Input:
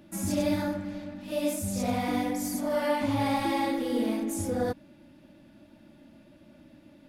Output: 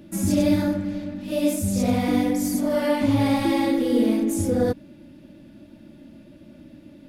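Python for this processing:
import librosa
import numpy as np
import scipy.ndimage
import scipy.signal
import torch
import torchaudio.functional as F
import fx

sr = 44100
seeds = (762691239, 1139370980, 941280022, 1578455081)

y = fx.curve_eq(x, sr, hz=(450.0, 800.0, 3000.0), db=(0, -8, -4))
y = y * librosa.db_to_amplitude(8.5)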